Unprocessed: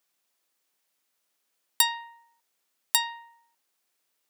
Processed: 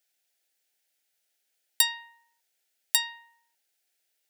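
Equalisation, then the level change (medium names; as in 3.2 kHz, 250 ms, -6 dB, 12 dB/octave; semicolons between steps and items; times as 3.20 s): high-pass 550 Hz 6 dB/octave; Butterworth band-stop 1.1 kHz, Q 2; 0.0 dB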